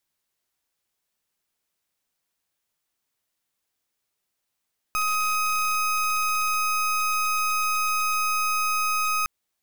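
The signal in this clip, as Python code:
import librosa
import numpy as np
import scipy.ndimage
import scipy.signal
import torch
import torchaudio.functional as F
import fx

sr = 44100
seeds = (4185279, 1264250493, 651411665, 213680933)

y = fx.pulse(sr, length_s=4.31, hz=1260.0, level_db=-24.0, duty_pct=29)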